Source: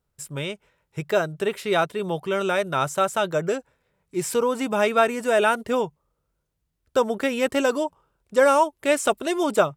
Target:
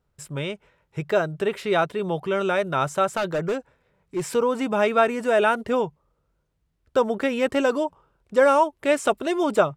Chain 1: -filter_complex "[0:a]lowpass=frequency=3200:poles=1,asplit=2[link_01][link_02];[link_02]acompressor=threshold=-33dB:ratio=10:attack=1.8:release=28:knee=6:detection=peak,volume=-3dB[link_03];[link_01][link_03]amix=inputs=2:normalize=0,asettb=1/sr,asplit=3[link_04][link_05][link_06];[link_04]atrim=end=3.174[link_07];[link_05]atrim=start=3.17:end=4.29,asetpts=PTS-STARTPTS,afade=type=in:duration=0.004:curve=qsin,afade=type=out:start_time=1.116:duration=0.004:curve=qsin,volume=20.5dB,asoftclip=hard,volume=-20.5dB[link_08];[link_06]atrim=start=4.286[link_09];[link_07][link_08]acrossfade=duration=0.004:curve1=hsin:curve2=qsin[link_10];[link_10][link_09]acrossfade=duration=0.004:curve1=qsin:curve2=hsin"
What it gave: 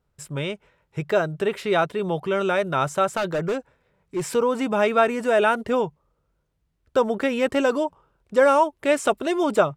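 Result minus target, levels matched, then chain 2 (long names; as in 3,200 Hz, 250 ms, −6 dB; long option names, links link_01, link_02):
downward compressor: peak gain reduction −6.5 dB
-filter_complex "[0:a]lowpass=frequency=3200:poles=1,asplit=2[link_01][link_02];[link_02]acompressor=threshold=-40dB:ratio=10:attack=1.8:release=28:knee=6:detection=peak,volume=-3dB[link_03];[link_01][link_03]amix=inputs=2:normalize=0,asettb=1/sr,asplit=3[link_04][link_05][link_06];[link_04]atrim=end=3.174[link_07];[link_05]atrim=start=3.17:end=4.29,asetpts=PTS-STARTPTS,afade=type=in:duration=0.004:curve=qsin,afade=type=out:start_time=1.116:duration=0.004:curve=qsin,volume=20.5dB,asoftclip=hard,volume=-20.5dB[link_08];[link_06]atrim=start=4.286[link_09];[link_07][link_08]acrossfade=duration=0.004:curve1=hsin:curve2=qsin[link_10];[link_10][link_09]acrossfade=duration=0.004:curve1=qsin:curve2=hsin"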